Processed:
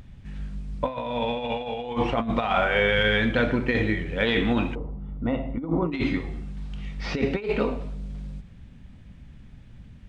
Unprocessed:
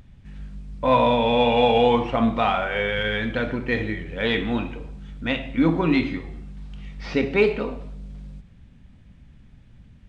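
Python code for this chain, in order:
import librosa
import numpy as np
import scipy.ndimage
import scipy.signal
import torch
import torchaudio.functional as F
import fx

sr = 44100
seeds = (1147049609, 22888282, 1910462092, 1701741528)

y = fx.over_compress(x, sr, threshold_db=-23.0, ratio=-0.5)
y = fx.savgol(y, sr, points=65, at=(4.75, 5.92))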